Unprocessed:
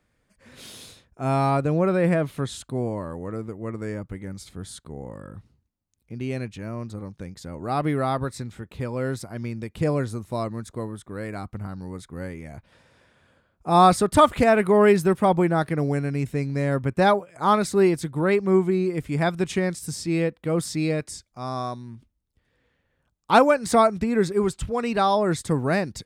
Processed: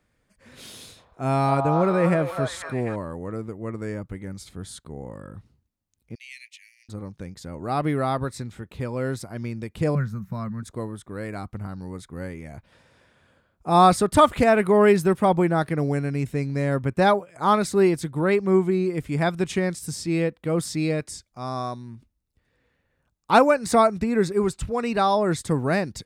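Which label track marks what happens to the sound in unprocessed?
0.730000	2.960000	delay with a stepping band-pass 0.248 s, band-pass from 860 Hz, each repeat 0.7 oct, level -1 dB
6.150000	6.890000	steep high-pass 1900 Hz 96 dB/oct
9.950000	10.630000	EQ curve 110 Hz 0 dB, 190 Hz +12 dB, 290 Hz -15 dB, 410 Hz -12 dB, 750 Hz -10 dB, 1500 Hz +2 dB, 3400 Hz -13 dB, 5900 Hz -9 dB, 9600 Hz -19 dB, 14000 Hz +3 dB
21.500000	25.210000	notch 3200 Hz

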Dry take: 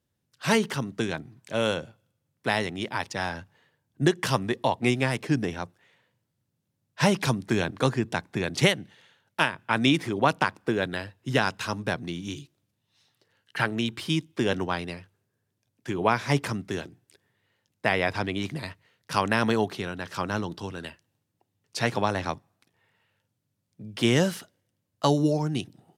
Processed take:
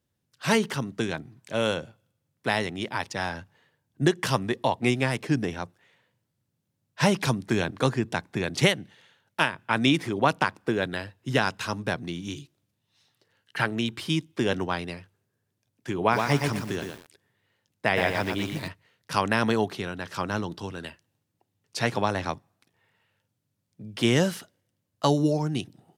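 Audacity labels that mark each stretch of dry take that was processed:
16.010000	18.680000	lo-fi delay 0.118 s, feedback 35%, word length 7-bit, level -4.5 dB

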